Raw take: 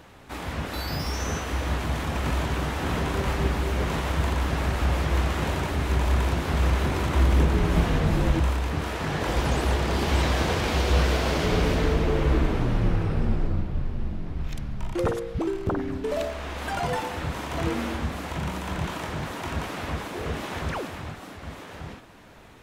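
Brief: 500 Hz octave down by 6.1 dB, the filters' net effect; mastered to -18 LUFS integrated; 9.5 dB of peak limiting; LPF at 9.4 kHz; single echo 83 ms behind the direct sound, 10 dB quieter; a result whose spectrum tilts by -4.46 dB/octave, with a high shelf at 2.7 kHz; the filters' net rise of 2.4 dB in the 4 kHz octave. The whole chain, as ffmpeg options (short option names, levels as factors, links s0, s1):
-af "lowpass=9400,equalizer=f=500:t=o:g=-8,highshelf=f=2700:g=-4.5,equalizer=f=4000:t=o:g=7,alimiter=limit=0.112:level=0:latency=1,aecho=1:1:83:0.316,volume=3.76"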